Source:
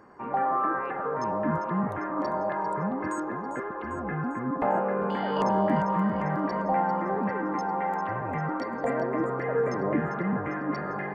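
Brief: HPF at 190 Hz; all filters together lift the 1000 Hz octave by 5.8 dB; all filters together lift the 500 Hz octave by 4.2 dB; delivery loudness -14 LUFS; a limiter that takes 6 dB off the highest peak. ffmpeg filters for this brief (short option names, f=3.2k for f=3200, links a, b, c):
-af "highpass=190,equalizer=f=500:t=o:g=3.5,equalizer=f=1k:t=o:g=6,volume=11.5dB,alimiter=limit=-4dB:level=0:latency=1"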